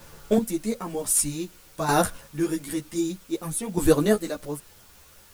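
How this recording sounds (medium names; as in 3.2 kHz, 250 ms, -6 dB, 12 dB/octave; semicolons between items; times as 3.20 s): chopped level 0.53 Hz, depth 65%, duty 20%; a quantiser's noise floor 10-bit, dither triangular; a shimmering, thickened sound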